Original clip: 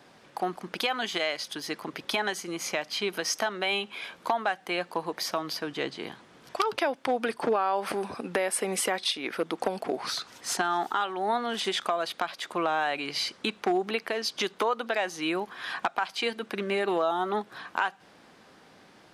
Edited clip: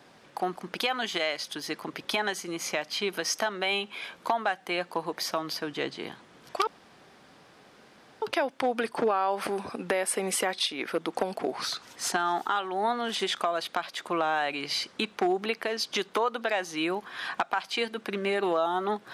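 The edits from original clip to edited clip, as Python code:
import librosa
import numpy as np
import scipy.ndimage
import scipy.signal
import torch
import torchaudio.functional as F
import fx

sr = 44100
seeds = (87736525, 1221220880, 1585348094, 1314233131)

y = fx.edit(x, sr, fx.insert_room_tone(at_s=6.67, length_s=1.55), tone=tone)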